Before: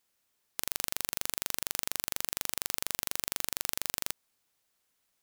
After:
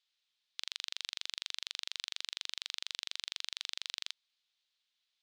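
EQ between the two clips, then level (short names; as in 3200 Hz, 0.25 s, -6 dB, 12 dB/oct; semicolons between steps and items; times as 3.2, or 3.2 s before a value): band-pass 3700 Hz, Q 2.8; air absorption 69 m; +6.5 dB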